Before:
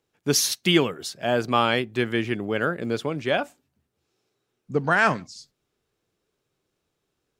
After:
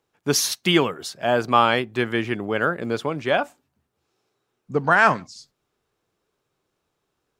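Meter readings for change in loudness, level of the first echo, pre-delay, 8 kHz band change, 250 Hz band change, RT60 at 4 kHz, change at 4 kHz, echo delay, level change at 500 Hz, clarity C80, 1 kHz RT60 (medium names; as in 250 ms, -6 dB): +2.5 dB, no echo, no reverb, 0.0 dB, +0.5 dB, no reverb, +0.5 dB, no echo, +2.0 dB, no reverb, no reverb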